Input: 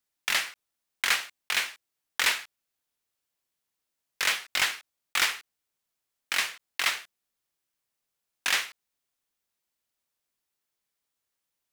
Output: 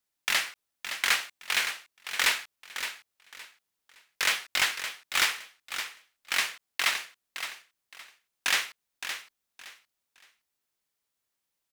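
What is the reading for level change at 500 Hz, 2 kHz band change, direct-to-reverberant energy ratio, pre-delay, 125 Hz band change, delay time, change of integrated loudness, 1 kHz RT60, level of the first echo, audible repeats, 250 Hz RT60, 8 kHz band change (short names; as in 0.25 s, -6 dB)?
+0.5 dB, +0.5 dB, none, none, n/a, 0.566 s, -1.5 dB, none, -9.5 dB, 3, none, +0.5 dB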